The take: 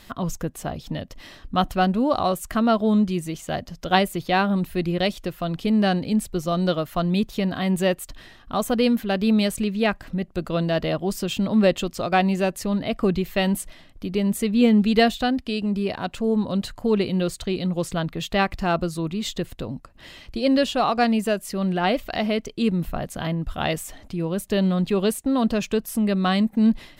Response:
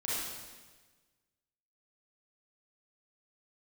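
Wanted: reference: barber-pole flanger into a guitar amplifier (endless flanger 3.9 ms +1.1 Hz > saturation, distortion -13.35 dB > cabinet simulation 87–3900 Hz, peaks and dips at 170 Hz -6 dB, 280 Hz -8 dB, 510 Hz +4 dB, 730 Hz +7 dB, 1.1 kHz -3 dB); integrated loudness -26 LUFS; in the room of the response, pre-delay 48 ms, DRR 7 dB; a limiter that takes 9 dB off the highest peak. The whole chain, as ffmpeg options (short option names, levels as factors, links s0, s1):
-filter_complex "[0:a]alimiter=limit=0.224:level=0:latency=1,asplit=2[s0][s1];[1:a]atrim=start_sample=2205,adelay=48[s2];[s1][s2]afir=irnorm=-1:irlink=0,volume=0.251[s3];[s0][s3]amix=inputs=2:normalize=0,asplit=2[s4][s5];[s5]adelay=3.9,afreqshift=1.1[s6];[s4][s6]amix=inputs=2:normalize=1,asoftclip=threshold=0.0891,highpass=87,equalizer=f=170:t=q:w=4:g=-6,equalizer=f=280:t=q:w=4:g=-8,equalizer=f=510:t=q:w=4:g=4,equalizer=f=730:t=q:w=4:g=7,equalizer=f=1100:t=q:w=4:g=-3,lowpass=f=3900:w=0.5412,lowpass=f=3900:w=1.3066,volume=1.41"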